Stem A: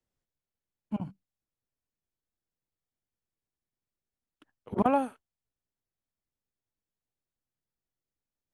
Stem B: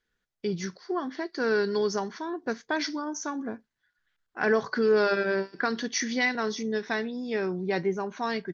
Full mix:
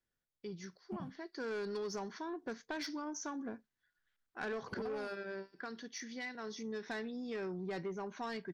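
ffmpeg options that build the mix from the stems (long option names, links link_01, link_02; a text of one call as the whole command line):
ffmpeg -i stem1.wav -i stem2.wav -filter_complex "[0:a]acompressor=threshold=-32dB:ratio=6,volume=-5.5dB[link_01];[1:a]volume=1.5dB,afade=type=in:start_time=1.19:duration=0.4:silence=0.421697,afade=type=out:start_time=4.33:duration=0.79:silence=0.354813,afade=type=in:start_time=6.37:duration=0.5:silence=0.375837[link_02];[link_01][link_02]amix=inputs=2:normalize=0,asoftclip=type=tanh:threshold=-31dB,acompressor=threshold=-37dB:ratio=6" out.wav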